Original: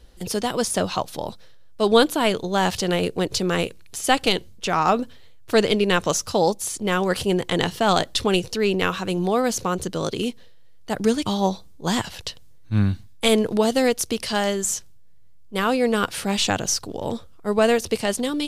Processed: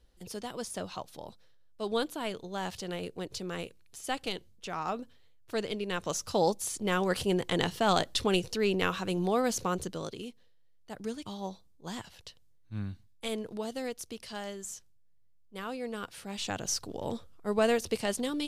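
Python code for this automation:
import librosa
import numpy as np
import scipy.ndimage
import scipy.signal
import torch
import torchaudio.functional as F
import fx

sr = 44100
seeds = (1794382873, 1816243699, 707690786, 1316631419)

y = fx.gain(x, sr, db=fx.line((5.88, -15.0), (6.39, -7.0), (9.76, -7.0), (10.27, -17.0), (16.29, -17.0), (16.77, -8.0)))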